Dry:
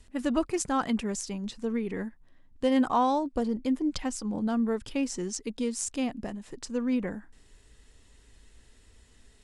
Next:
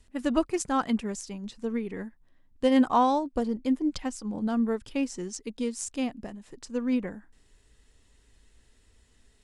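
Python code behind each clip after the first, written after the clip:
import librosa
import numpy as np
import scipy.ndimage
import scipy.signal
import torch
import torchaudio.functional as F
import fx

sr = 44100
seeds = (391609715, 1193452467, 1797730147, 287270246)

y = fx.upward_expand(x, sr, threshold_db=-36.0, expansion=1.5)
y = y * 10.0 ** (3.5 / 20.0)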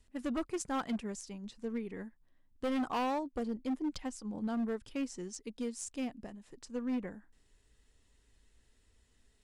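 y = np.clip(10.0 ** (23.0 / 20.0) * x, -1.0, 1.0) / 10.0 ** (23.0 / 20.0)
y = y * 10.0 ** (-7.0 / 20.0)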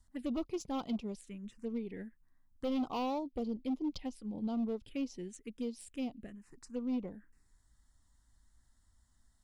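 y = fx.env_phaser(x, sr, low_hz=420.0, high_hz=1700.0, full_db=-34.5)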